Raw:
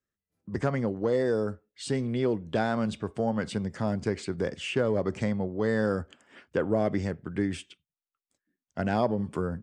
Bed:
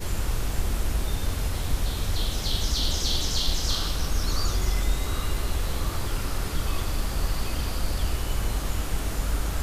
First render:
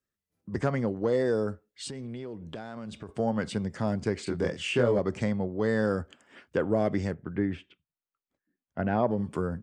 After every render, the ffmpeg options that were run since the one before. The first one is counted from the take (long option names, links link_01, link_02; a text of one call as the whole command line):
ffmpeg -i in.wav -filter_complex "[0:a]asettb=1/sr,asplit=3[link_01][link_02][link_03];[link_01]atrim=end=1.874[link_04];[link_02]atrim=start=1.87:end=3.09,asetpts=PTS-STARTPTS,afade=type=in:duration=0.004:curve=qsin,afade=type=out:start_time=1.216:duration=0.004:curve=qsin,acompressor=threshold=-36dB:ratio=5:attack=3.2:release=140:knee=1:detection=peak[link_05];[link_03]atrim=start=3.086[link_06];[link_04][link_05]acrossfade=duration=0.004:curve1=hsin:curve2=qsin[link_07];[link_07][link_06]acrossfade=duration=0.004:curve1=qsin:curve2=hsin,asettb=1/sr,asplit=3[link_08][link_09][link_10];[link_08]atrim=end=4.244[link_11];[link_09]atrim=start=4.24:end=4.99,asetpts=PTS-STARTPTS,afade=type=in:duration=0.004:curve=qsin,afade=type=out:start_time=0.746:duration=0.004:curve=qsin,asplit=2[link_12][link_13];[link_13]adelay=25,volume=-2.5dB[link_14];[link_12][link_14]amix=inputs=2:normalize=0,atrim=end_sample=33075[link_15];[link_10]atrim=start=4.986[link_16];[link_11][link_15]acrossfade=duration=0.004:curve1=hsin:curve2=qsin[link_17];[link_17][link_16]acrossfade=duration=0.004:curve1=qsin:curve2=hsin,asettb=1/sr,asplit=3[link_18][link_19][link_20];[link_18]atrim=end=7.144[link_21];[link_19]atrim=start=7.14:end=9.11,asetpts=PTS-STARTPTS,afade=type=in:duration=0.004:curve=qsin,afade=type=out:start_time=1.966:duration=0.004:curve=qsin,lowpass=2100[link_22];[link_20]atrim=start=9.106[link_23];[link_21][link_22]acrossfade=duration=0.004:curve1=hsin:curve2=qsin[link_24];[link_24][link_23]acrossfade=duration=0.004:curve1=qsin:curve2=hsin" out.wav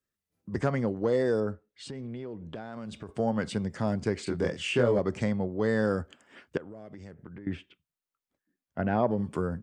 ffmpeg -i in.wav -filter_complex "[0:a]asettb=1/sr,asplit=3[link_01][link_02][link_03];[link_01]atrim=end=1.404[link_04];[link_02]atrim=start=1.4:end=2.73,asetpts=PTS-STARTPTS,afade=type=in:duration=0.004:curve=qsin,afade=type=out:start_time=1.326:duration=0.004:curve=qsin,lowpass=frequency=2800:poles=1[link_05];[link_03]atrim=start=2.726[link_06];[link_04][link_05]acrossfade=duration=0.004:curve1=hsin:curve2=qsin[link_07];[link_07][link_06]acrossfade=duration=0.004:curve1=qsin:curve2=hsin,asettb=1/sr,asplit=3[link_08][link_09][link_10];[link_08]atrim=end=6.574[link_11];[link_09]atrim=start=6.57:end=7.47,asetpts=PTS-STARTPTS,afade=type=in:duration=0.004:curve=qsin,afade=type=out:start_time=0.896:duration=0.004:curve=qsin,acompressor=threshold=-40dB:ratio=16:attack=3.2:release=140:knee=1:detection=peak[link_12];[link_10]atrim=start=7.466[link_13];[link_11][link_12]acrossfade=duration=0.004:curve1=hsin:curve2=qsin[link_14];[link_14][link_13]acrossfade=duration=0.004:curve1=qsin:curve2=hsin" out.wav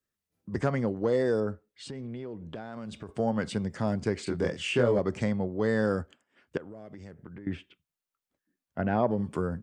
ffmpeg -i in.wav -filter_complex "[0:a]asplit=3[link_01][link_02][link_03];[link_01]atrim=end=6.25,asetpts=PTS-STARTPTS,afade=type=out:start_time=6:duration=0.25:silence=0.141254[link_04];[link_02]atrim=start=6.25:end=6.35,asetpts=PTS-STARTPTS,volume=-17dB[link_05];[link_03]atrim=start=6.35,asetpts=PTS-STARTPTS,afade=type=in:duration=0.25:silence=0.141254[link_06];[link_04][link_05][link_06]concat=n=3:v=0:a=1" out.wav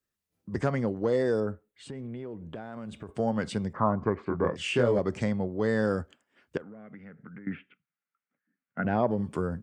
ffmpeg -i in.wav -filter_complex "[0:a]asettb=1/sr,asplit=3[link_01][link_02][link_03];[link_01]atrim=end=1.464[link_04];[link_02]atrim=start=1.46:end=3.15,asetpts=PTS-STARTPTS,afade=type=in:duration=0.004:curve=qsin,afade=type=out:start_time=1.686:duration=0.004:curve=qsin,equalizer=frequency=5100:width=1.5:gain=-9.5[link_05];[link_03]atrim=start=3.146[link_06];[link_04][link_05]acrossfade=duration=0.004:curve1=hsin:curve2=qsin[link_07];[link_07][link_06]acrossfade=duration=0.004:curve1=qsin:curve2=hsin,asettb=1/sr,asplit=3[link_08][link_09][link_10];[link_08]atrim=end=3.734[link_11];[link_09]atrim=start=3.73:end=4.56,asetpts=PTS-STARTPTS,afade=type=in:duration=0.004:curve=qsin,afade=type=out:start_time=0.826:duration=0.004:curve=qsin,lowpass=frequency=1100:width_type=q:width=8.4[link_12];[link_10]atrim=start=4.556[link_13];[link_11][link_12]acrossfade=duration=0.004:curve1=hsin:curve2=qsin[link_14];[link_14][link_13]acrossfade=duration=0.004:curve1=qsin:curve2=hsin,asettb=1/sr,asplit=3[link_15][link_16][link_17];[link_15]atrim=end=6.624[link_18];[link_16]atrim=start=6.62:end=8.85,asetpts=PTS-STARTPTS,afade=type=in:duration=0.004:curve=qsin,afade=type=out:start_time=2.226:duration=0.004:curve=qsin,highpass=frequency=130:width=0.5412,highpass=frequency=130:width=1.3066,equalizer=frequency=220:width_type=q:width=4:gain=4,equalizer=frequency=350:width_type=q:width=4:gain=-10,equalizer=frequency=620:width_type=q:width=4:gain=-6,equalizer=frequency=950:width_type=q:width=4:gain=-6,equalizer=frequency=1400:width_type=q:width=4:gain=8,equalizer=frequency=2100:width_type=q:width=4:gain=5,lowpass=frequency=2500:width=0.5412,lowpass=frequency=2500:width=1.3066[link_19];[link_17]atrim=start=8.846[link_20];[link_18][link_19]acrossfade=duration=0.004:curve1=hsin:curve2=qsin[link_21];[link_21][link_20]acrossfade=duration=0.004:curve1=qsin:curve2=hsin" out.wav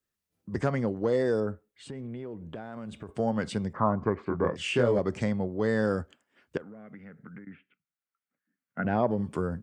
ffmpeg -i in.wav -filter_complex "[0:a]asplit=2[link_01][link_02];[link_01]atrim=end=7.45,asetpts=PTS-STARTPTS,afade=type=out:start_time=7.446:duration=0.004:curve=hsin:silence=0.237137[link_03];[link_02]atrim=start=7.45,asetpts=PTS-STARTPTS,afade=type=in:duration=1.48:silence=0.237137[link_04];[link_03][link_04]concat=n=2:v=0:a=1" out.wav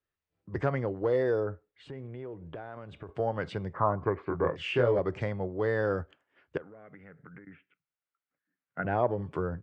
ffmpeg -i in.wav -af "lowpass=2900,equalizer=frequency=220:width_type=o:width=0.37:gain=-14.5" out.wav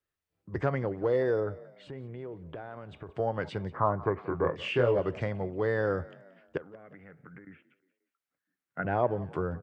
ffmpeg -i in.wav -filter_complex "[0:a]asplit=4[link_01][link_02][link_03][link_04];[link_02]adelay=178,afreqshift=43,volume=-20.5dB[link_05];[link_03]adelay=356,afreqshift=86,volume=-27.6dB[link_06];[link_04]adelay=534,afreqshift=129,volume=-34.8dB[link_07];[link_01][link_05][link_06][link_07]amix=inputs=4:normalize=0" out.wav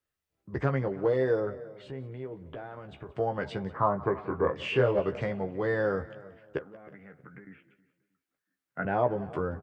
ffmpeg -i in.wav -filter_complex "[0:a]asplit=2[link_01][link_02];[link_02]adelay=15,volume=-6dB[link_03];[link_01][link_03]amix=inputs=2:normalize=0,asplit=2[link_04][link_05];[link_05]adelay=317,lowpass=frequency=2100:poles=1,volume=-19.5dB,asplit=2[link_06][link_07];[link_07]adelay=317,lowpass=frequency=2100:poles=1,volume=0.3[link_08];[link_04][link_06][link_08]amix=inputs=3:normalize=0" out.wav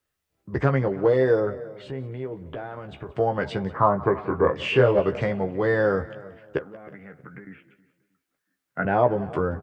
ffmpeg -i in.wav -af "volume=6.5dB" out.wav